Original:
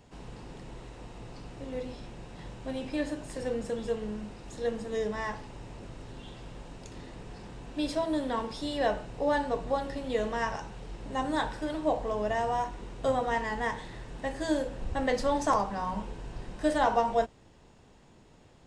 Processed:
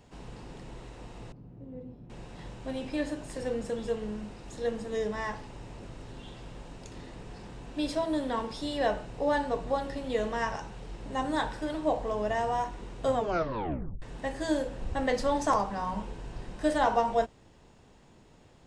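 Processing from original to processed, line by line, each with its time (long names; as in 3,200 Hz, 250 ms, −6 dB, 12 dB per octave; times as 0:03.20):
0:01.32–0:02.10: resonant band-pass 150 Hz, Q 1
0:13.14: tape stop 0.88 s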